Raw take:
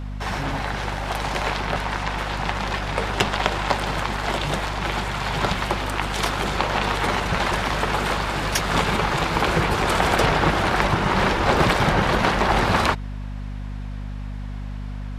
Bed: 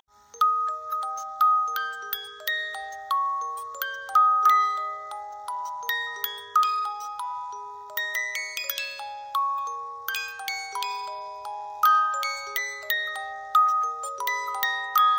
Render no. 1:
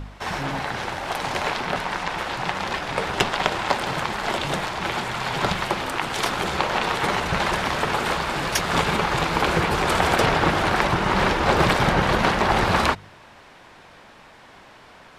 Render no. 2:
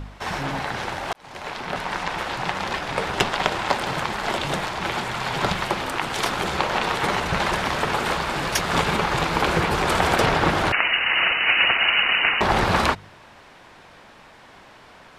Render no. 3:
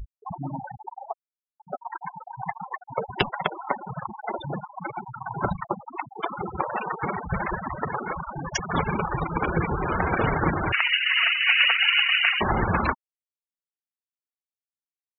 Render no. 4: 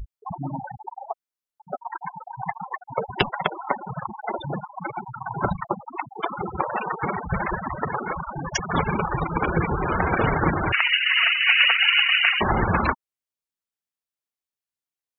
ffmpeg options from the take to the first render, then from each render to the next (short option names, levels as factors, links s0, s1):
-af "bandreject=f=50:t=h:w=4,bandreject=f=100:t=h:w=4,bandreject=f=150:t=h:w=4,bandreject=f=200:t=h:w=4,bandreject=f=250:t=h:w=4"
-filter_complex "[0:a]asettb=1/sr,asplit=3[s0][s1][s2];[s0]atrim=end=10.724[s3];[s1]atrim=start=10.72:end=12.41,asetpts=PTS-STARTPTS,afade=t=in:d=0.004:c=qsin,afade=t=out:st=1.686:d=0.004:c=qsin,lowpass=f=2600:t=q:w=0.5098,lowpass=f=2600:t=q:w=0.6013,lowpass=f=2600:t=q:w=0.9,lowpass=f=2600:t=q:w=2.563,afreqshift=-3000[s4];[s2]atrim=start=12.406[s5];[s3][s4]acrossfade=d=0.004:c1=hsin:c2=qsin[s6];[s6][s5]acrossfade=d=0.004:c1=qsin:c2=hsin,asplit=2[s7][s8];[s7]atrim=end=1.13,asetpts=PTS-STARTPTS,afade=t=out:st=1.126:d=0.004:c=hsin[s9];[s8]atrim=start=1.13,asetpts=PTS-STARTPTS,afade=t=in:d=0.83[s10];[s9][s10]concat=n=2:v=0:a=1"
-af "afftfilt=real='re*gte(hypot(re,im),0.178)':imag='im*gte(hypot(re,im),0.178)':win_size=1024:overlap=0.75,adynamicequalizer=threshold=0.0141:dfrequency=670:dqfactor=1.1:tfrequency=670:tqfactor=1.1:attack=5:release=100:ratio=0.375:range=3.5:mode=cutabove:tftype=bell"
-af "volume=1.26"